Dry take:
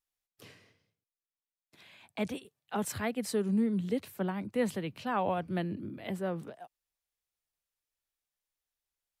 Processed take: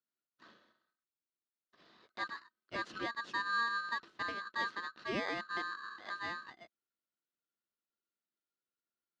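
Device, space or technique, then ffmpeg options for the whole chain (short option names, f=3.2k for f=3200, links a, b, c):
ring modulator pedal into a guitar cabinet: -af "aeval=exprs='val(0)*sgn(sin(2*PI*1400*n/s))':c=same,highpass=85,equalizer=f=99:t=q:w=4:g=-8,equalizer=f=220:t=q:w=4:g=7,equalizer=f=340:t=q:w=4:g=9,equalizer=f=820:t=q:w=4:g=-8,equalizer=f=2.3k:t=q:w=4:g=-8,equalizer=f=3.4k:t=q:w=4:g=-4,lowpass=f=4.1k:w=0.5412,lowpass=f=4.1k:w=1.3066,volume=-4dB"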